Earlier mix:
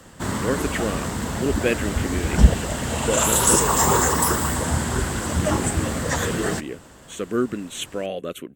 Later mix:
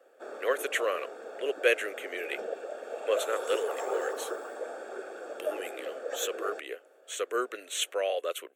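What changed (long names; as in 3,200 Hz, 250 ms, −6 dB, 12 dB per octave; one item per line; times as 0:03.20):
background: add moving average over 44 samples
master: add Butterworth high-pass 450 Hz 36 dB per octave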